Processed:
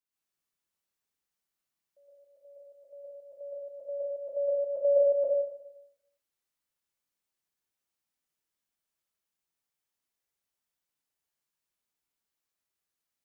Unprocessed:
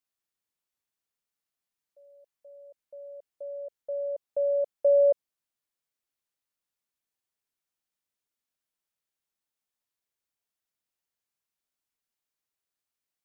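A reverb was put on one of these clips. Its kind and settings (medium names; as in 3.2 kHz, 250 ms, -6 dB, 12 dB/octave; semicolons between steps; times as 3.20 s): plate-style reverb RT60 0.84 s, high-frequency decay 0.9×, pre-delay 100 ms, DRR -7.5 dB; trim -7 dB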